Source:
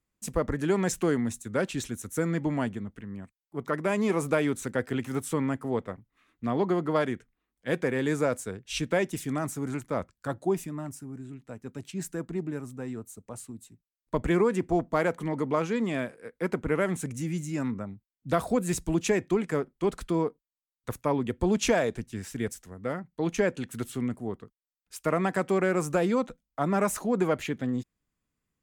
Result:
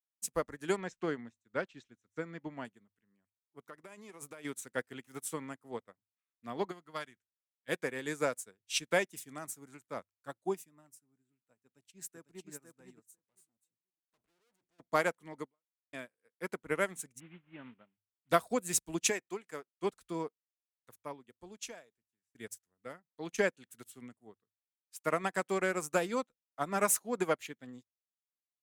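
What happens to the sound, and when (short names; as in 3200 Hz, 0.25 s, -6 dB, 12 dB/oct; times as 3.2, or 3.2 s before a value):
0.76–2.65 air absorption 160 m
3.62–4.45 compressor 12:1, threshold -27 dBFS
6.71–7.69 bell 440 Hz -8.5 dB 2.1 oct
11.62–12.49 echo throw 0.5 s, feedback 20%, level -3 dB
13.16–14.8 tube stage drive 43 dB, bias 0.5
15.44–15.93 fade out exponential
17.2–18.29 CVSD 16 kbps
19.1–19.74 low shelf 250 Hz -10.5 dB
20.24–22.35 fade out, to -23.5 dB
whole clip: tilt +2.5 dB/oct; notches 50/100 Hz; upward expander 2.5:1, over -47 dBFS; gain +1.5 dB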